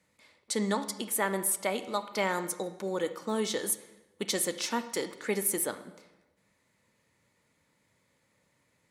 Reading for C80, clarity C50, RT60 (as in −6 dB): 14.5 dB, 12.5 dB, 1.0 s